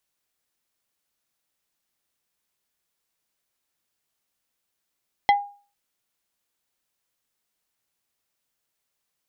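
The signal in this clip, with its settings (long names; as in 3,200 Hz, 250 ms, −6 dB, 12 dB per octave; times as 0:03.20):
struck wood plate, lowest mode 812 Hz, decay 0.39 s, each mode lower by 6 dB, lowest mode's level −11 dB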